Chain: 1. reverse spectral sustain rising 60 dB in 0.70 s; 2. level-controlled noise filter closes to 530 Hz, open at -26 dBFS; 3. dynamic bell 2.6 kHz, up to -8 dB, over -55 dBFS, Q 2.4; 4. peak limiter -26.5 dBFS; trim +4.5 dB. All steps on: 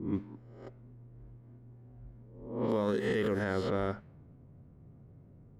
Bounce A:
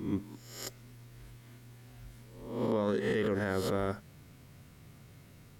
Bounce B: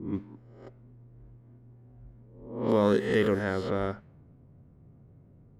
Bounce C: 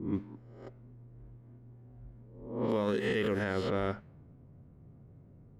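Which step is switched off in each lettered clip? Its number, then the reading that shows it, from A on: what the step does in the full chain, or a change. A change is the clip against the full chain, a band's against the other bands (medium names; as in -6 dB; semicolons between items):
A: 2, 4 kHz band +2.5 dB; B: 4, crest factor change +4.5 dB; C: 3, 4 kHz band +3.0 dB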